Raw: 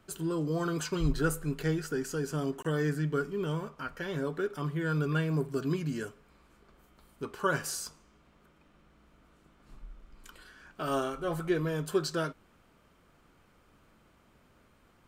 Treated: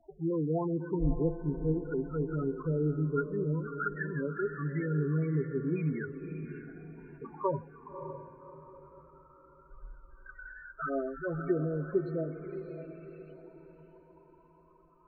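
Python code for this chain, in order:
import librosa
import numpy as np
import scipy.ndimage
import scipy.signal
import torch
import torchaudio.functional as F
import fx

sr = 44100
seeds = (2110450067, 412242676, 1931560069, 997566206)

y = fx.dmg_crackle(x, sr, seeds[0], per_s=140.0, level_db=-45.0)
y = fx.env_flanger(y, sr, rest_ms=3.3, full_db=-28.0)
y = fx.filter_lfo_lowpass(y, sr, shape='saw_up', hz=0.15, low_hz=800.0, high_hz=2700.0, q=4.6)
y = fx.spec_topn(y, sr, count=8)
y = fx.echo_diffused(y, sr, ms=596, feedback_pct=43, wet_db=-9.0)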